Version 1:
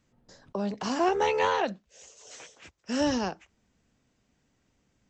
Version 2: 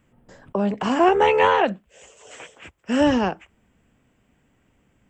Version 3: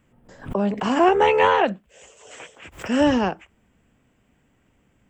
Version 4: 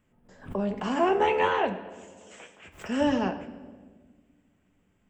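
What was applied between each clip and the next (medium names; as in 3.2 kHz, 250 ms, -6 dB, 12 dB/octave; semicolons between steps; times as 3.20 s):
high-order bell 5 kHz -13.5 dB 1 oct; trim +8.5 dB
swell ahead of each attack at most 150 dB/s
reverberation RT60 1.5 s, pre-delay 5 ms, DRR 6 dB; trim -8 dB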